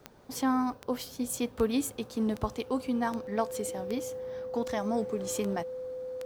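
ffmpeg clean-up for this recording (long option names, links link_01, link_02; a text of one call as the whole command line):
ffmpeg -i in.wav -af "adeclick=threshold=4,bandreject=frequency=510:width=30" out.wav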